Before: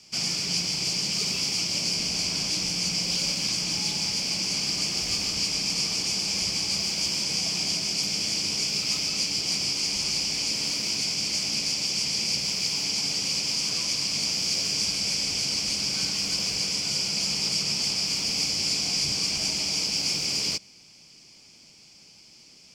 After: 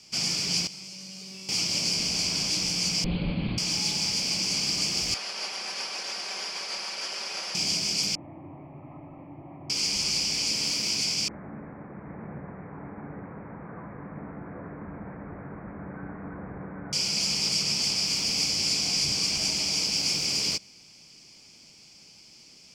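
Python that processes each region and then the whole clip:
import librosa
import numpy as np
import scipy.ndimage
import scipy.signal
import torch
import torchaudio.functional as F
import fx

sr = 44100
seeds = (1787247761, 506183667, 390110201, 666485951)

y = fx.chain(x, sr, fx.highpass(hz=99.0, slope=12),
    fx.comb_fb(f0_hz=190.0, decay_s=1.5, harmonics='all', damping=0.0, mix_pct=90),
    fx.env_flatten(amount_pct=100), at=(0.67, 1.49))
y = fx.chain(y, sr, fx.steep_lowpass(hz=4200.0, slope=96),
    fx.tilt_eq(slope=-4.0), at=(3.04, 3.58))
y = fx.chain(y, sr, fx.lower_of_two(delay_ms=5.2),
    fx.highpass(hz=570.0, slope=12),
    fx.air_absorb(metres=110.0), at=(5.14, 7.55))
y = fx.chain(y, sr, fx.steep_lowpass(hz=1700.0, slope=48),
    fx.fixed_phaser(hz=300.0, stages=8), at=(8.15, 9.7))
y = fx.chain(y, sr, fx.steep_lowpass(hz=1800.0, slope=72),
    fx.echo_single(ms=792, db=-5.0), at=(11.28, 16.93))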